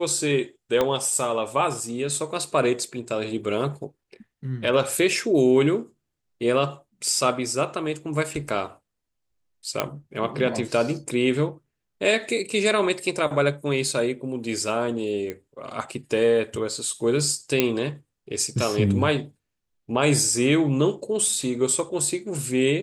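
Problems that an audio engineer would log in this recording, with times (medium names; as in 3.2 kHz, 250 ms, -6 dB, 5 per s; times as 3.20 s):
0.81 s: pop -9 dBFS
9.80 s: pop -7 dBFS
15.30 s: pop -18 dBFS
17.60 s: pop -4 dBFS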